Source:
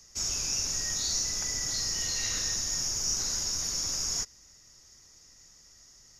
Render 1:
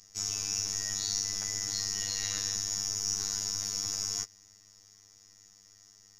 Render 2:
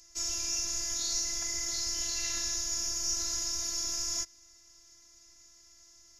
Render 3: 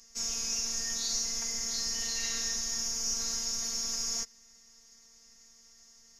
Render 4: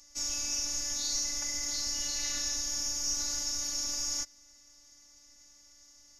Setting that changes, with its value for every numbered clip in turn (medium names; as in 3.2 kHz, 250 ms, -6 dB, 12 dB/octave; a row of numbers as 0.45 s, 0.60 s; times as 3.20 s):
robot voice, frequency: 100 Hz, 340 Hz, 230 Hz, 290 Hz